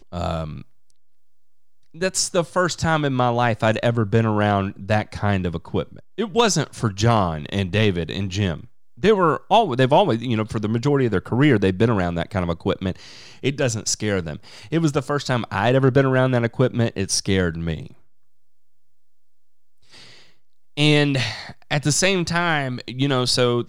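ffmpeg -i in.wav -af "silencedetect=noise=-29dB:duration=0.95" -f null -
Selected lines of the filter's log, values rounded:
silence_start: 0.61
silence_end: 2.01 | silence_duration: 1.40
silence_start: 17.86
silence_end: 20.77 | silence_duration: 2.91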